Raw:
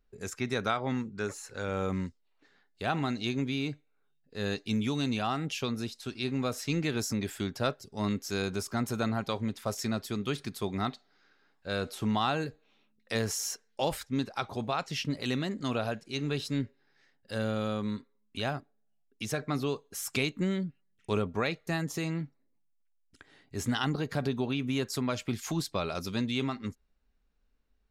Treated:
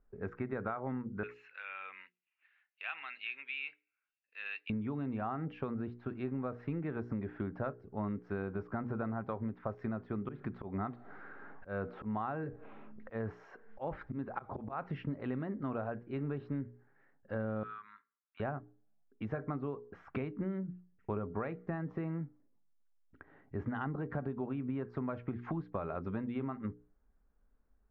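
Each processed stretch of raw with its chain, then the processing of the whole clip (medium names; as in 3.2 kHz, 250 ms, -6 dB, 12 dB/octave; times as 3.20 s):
1.23–4.70 s: de-esser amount 95% + resonant high-pass 2.6 kHz, resonance Q 6.9 + treble shelf 4.1 kHz +10 dB
10.13–14.94 s: upward compressor, threshold -33 dBFS + slow attack 179 ms
17.63–18.40 s: elliptic band-pass 1.3–7.8 kHz + hard clipper -28.5 dBFS
whole clip: low-pass 1.6 kHz 24 dB/octave; hum notches 60/120/180/240/300/360/420/480 Hz; compression, threshold -36 dBFS; trim +2 dB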